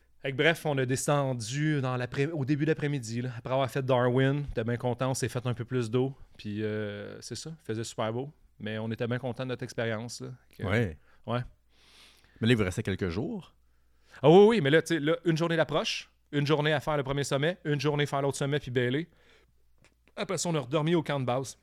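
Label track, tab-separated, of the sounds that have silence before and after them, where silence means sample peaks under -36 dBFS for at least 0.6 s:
12.410000	13.400000	sound
14.230000	19.030000	sound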